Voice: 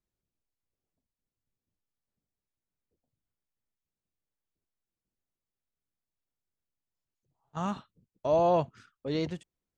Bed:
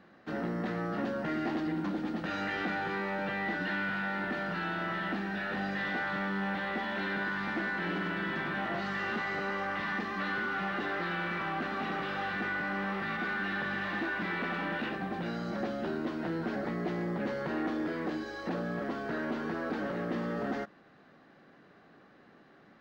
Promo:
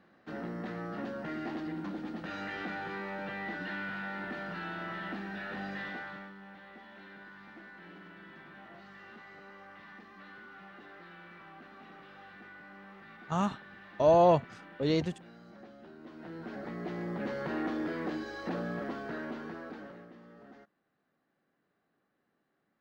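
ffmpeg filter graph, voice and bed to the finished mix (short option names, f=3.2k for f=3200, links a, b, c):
-filter_complex "[0:a]adelay=5750,volume=2.5dB[a];[1:a]volume=11.5dB,afade=t=out:st=5.77:d=0.58:silence=0.237137,afade=t=in:st=15.97:d=1.49:silence=0.149624,afade=t=out:st=18.65:d=1.48:silence=0.112202[b];[a][b]amix=inputs=2:normalize=0"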